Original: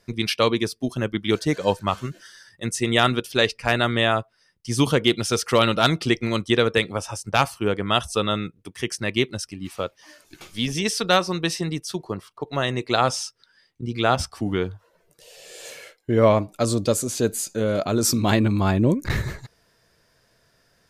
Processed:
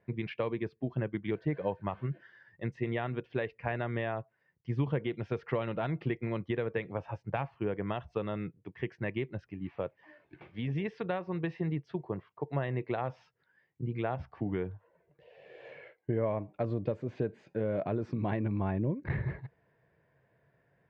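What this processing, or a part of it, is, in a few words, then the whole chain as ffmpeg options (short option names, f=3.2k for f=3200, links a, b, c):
bass amplifier: -af "acompressor=threshold=-23dB:ratio=5,highpass=73,equalizer=f=140:t=q:w=4:g=6,equalizer=f=240:t=q:w=4:g=-4,equalizer=f=1.3k:t=q:w=4:g=-10,lowpass=f=2.1k:w=0.5412,lowpass=f=2.1k:w=1.3066,volume=-5dB"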